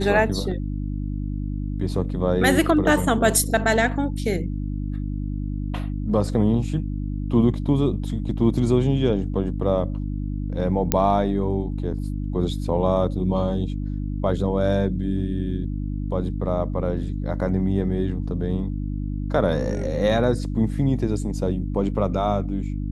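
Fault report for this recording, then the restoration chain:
hum 50 Hz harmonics 6 -27 dBFS
10.92 pop -2 dBFS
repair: de-click; de-hum 50 Hz, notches 6

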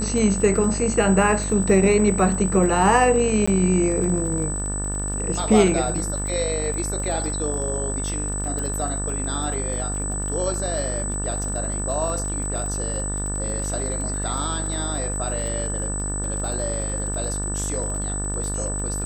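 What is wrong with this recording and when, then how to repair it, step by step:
buzz 50 Hz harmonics 36 -28 dBFS
crackle 32/s -29 dBFS
tone 8000 Hz -28 dBFS
3.46–3.48 gap 15 ms
8.59 pop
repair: de-click; de-hum 50 Hz, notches 36; notch 8000 Hz, Q 30; interpolate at 3.46, 15 ms

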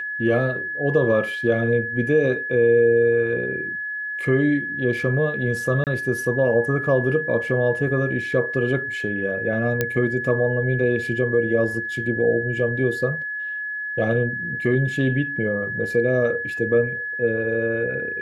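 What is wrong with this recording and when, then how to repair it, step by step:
tone 1700 Hz -26 dBFS
5.84–5.87 gap 28 ms
9.81 pop -7 dBFS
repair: de-click; notch 1700 Hz, Q 30; interpolate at 5.84, 28 ms

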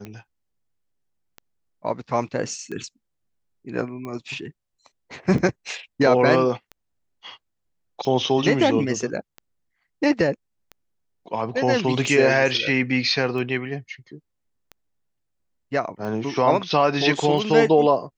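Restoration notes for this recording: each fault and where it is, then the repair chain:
tick 45 rpm -22 dBFS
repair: de-click

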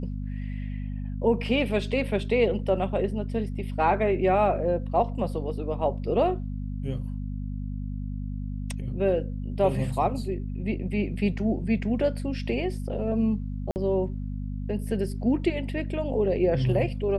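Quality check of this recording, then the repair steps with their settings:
hum 50 Hz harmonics 5 -32 dBFS
13.71–13.76 gap 49 ms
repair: de-hum 50 Hz, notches 5; interpolate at 13.71, 49 ms

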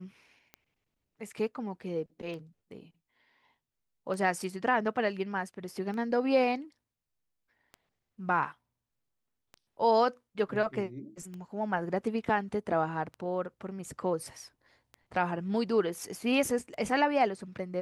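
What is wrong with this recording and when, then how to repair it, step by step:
tick 33 1/3 rpm -30 dBFS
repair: de-click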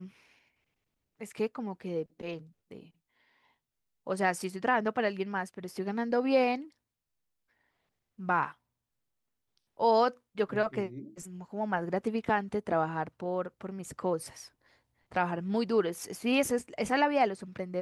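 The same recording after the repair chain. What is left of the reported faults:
none

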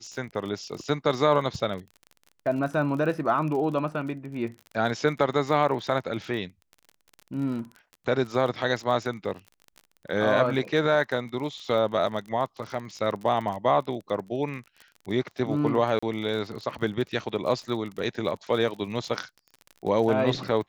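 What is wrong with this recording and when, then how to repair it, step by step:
crackle 33/s -34 dBFS
15.99–16.02 gap 35 ms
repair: de-click; interpolate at 15.99, 35 ms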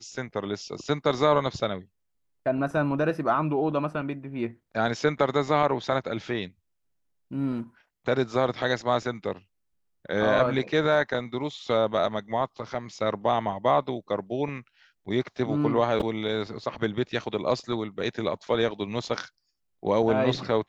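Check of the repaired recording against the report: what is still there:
none

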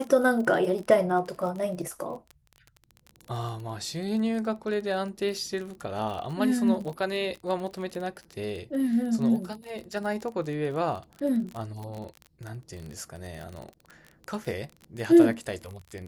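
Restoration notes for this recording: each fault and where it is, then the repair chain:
crackle 27/s -33 dBFS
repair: de-click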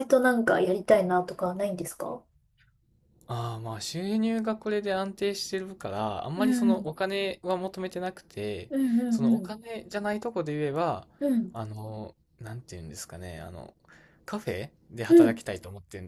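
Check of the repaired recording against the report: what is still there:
none

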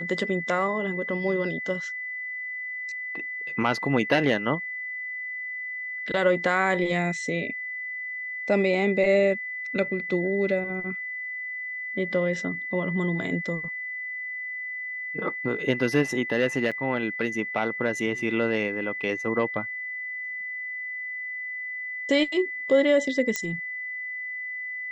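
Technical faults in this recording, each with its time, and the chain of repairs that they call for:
tone 2000 Hz -31 dBFS
16.71–16.72 gap 6.1 ms
23.36 pop -11 dBFS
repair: de-click; notch 2000 Hz, Q 30; interpolate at 16.71, 6.1 ms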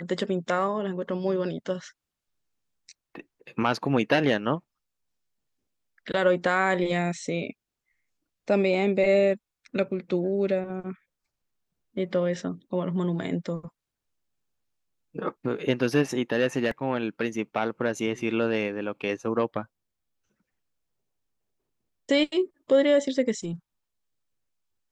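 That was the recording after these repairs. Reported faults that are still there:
none

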